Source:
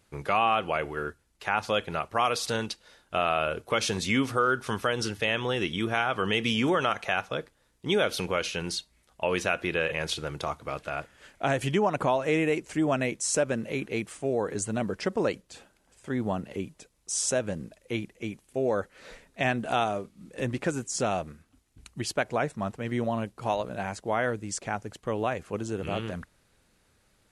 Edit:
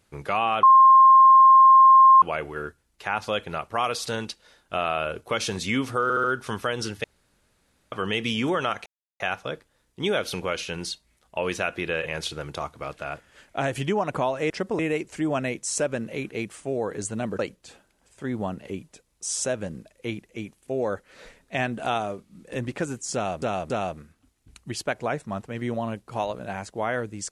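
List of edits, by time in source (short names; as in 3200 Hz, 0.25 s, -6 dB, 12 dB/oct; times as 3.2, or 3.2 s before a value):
0.63 add tone 1060 Hz -9.5 dBFS 1.59 s
4.44 stutter 0.07 s, 4 plays
5.24–6.12 room tone
7.06 insert silence 0.34 s
14.96–15.25 move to 12.36
21–21.28 loop, 3 plays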